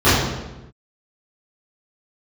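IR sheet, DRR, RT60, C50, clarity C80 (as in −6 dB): −16.0 dB, 1.0 s, −0.5 dB, 2.5 dB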